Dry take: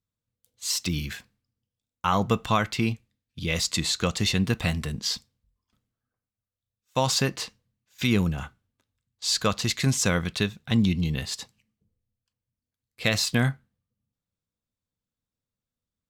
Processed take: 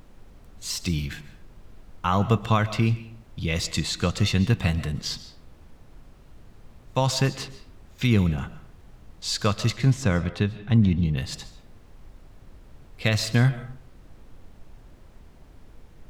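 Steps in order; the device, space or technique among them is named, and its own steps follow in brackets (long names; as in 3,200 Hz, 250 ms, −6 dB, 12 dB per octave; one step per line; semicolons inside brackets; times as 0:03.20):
car interior (parametric band 110 Hz +7 dB 0.84 octaves; high-shelf EQ 4,500 Hz −5.5 dB; brown noise bed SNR 19 dB)
0:09.70–0:11.17: high-shelf EQ 3,100 Hz −10 dB
comb and all-pass reverb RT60 0.54 s, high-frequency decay 0.7×, pre-delay 95 ms, DRR 14 dB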